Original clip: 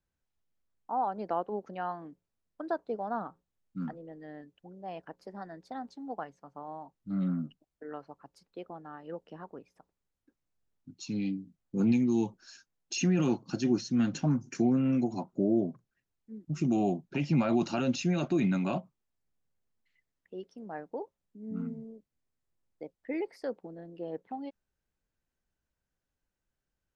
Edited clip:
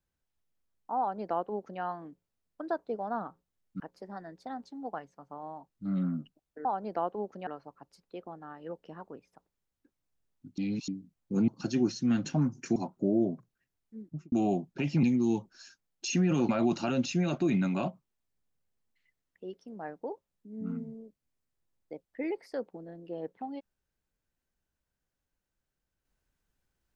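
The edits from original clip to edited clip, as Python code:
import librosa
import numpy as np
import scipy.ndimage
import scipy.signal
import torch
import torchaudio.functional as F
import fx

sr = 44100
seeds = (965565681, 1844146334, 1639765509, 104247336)

y = fx.studio_fade_out(x, sr, start_s=16.38, length_s=0.3)
y = fx.edit(y, sr, fx.duplicate(start_s=0.99, length_s=0.82, to_s=7.9),
    fx.cut(start_s=3.8, length_s=1.25),
    fx.reverse_span(start_s=11.01, length_s=0.3),
    fx.move(start_s=11.91, length_s=1.46, to_s=17.39),
    fx.cut(start_s=14.65, length_s=0.47), tone=tone)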